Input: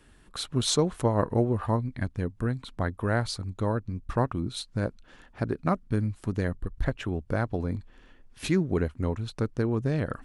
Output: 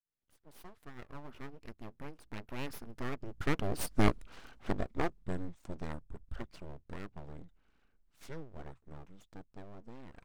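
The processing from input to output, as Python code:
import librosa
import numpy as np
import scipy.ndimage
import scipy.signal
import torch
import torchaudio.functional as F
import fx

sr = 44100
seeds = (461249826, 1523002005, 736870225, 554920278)

y = fx.fade_in_head(x, sr, length_s=1.94)
y = fx.doppler_pass(y, sr, speed_mps=58, closest_m=15.0, pass_at_s=4.08)
y = np.abs(y)
y = y * 10.0 ** (5.5 / 20.0)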